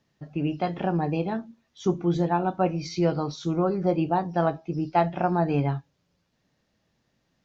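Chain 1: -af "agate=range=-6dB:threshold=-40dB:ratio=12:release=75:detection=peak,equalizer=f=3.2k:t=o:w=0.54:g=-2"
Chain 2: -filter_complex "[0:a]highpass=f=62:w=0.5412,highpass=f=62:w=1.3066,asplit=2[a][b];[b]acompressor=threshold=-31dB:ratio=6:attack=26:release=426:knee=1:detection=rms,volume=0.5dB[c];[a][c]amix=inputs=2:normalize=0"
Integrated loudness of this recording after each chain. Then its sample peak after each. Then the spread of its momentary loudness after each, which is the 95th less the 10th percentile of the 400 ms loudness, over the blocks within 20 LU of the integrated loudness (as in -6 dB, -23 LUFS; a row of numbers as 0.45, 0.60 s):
-26.5, -24.0 LUFS; -8.5, -5.5 dBFS; 6, 6 LU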